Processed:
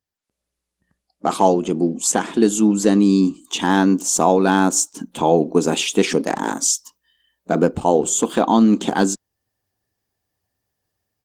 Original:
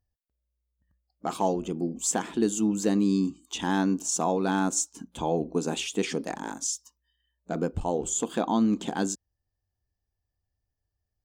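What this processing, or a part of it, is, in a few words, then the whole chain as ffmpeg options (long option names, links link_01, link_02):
video call: -af "highpass=170,dynaudnorm=framelen=160:gausssize=3:maxgain=14.5dB" -ar 48000 -c:a libopus -b:a 20k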